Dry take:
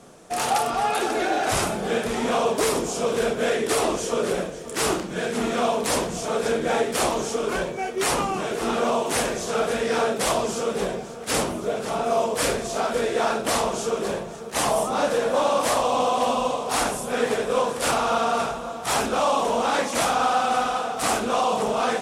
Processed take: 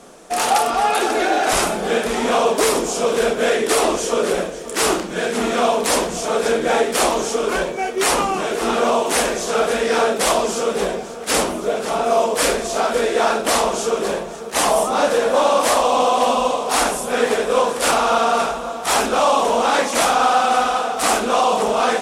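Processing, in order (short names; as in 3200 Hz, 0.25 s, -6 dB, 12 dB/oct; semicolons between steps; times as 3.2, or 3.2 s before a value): bell 110 Hz -15 dB 0.96 oct; gain +6 dB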